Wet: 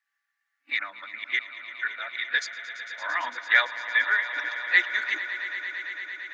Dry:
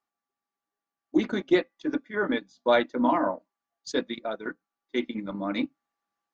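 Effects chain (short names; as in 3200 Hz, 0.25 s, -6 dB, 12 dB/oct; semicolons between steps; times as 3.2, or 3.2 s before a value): whole clip reversed; resonant high-pass 1800 Hz, resonance Q 5.4; swelling echo 0.113 s, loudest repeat 5, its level -15.5 dB; gain +1.5 dB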